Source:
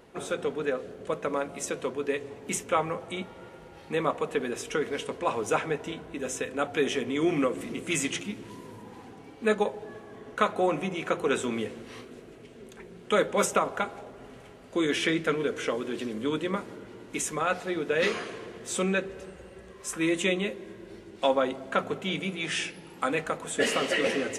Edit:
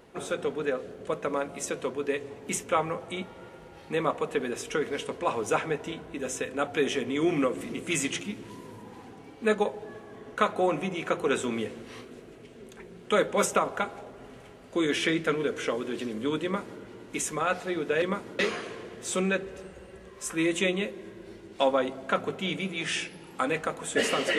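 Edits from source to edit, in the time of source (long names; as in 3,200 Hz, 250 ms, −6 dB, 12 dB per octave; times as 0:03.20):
0:16.44–0:16.81: duplicate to 0:18.02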